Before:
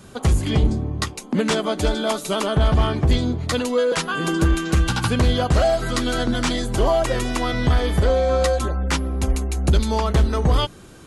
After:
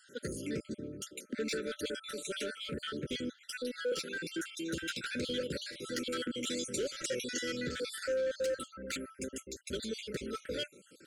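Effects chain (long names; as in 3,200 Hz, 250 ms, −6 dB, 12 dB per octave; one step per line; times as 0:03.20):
time-frequency cells dropped at random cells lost 52%
high-pass filter 290 Hz 12 dB per octave
soft clipping −21 dBFS, distortion −13 dB
0:06.47–0:08.14: parametric band 6,700 Hz +10.5 dB 0.92 octaves
brick-wall band-stop 600–1,300 Hz
level −7.5 dB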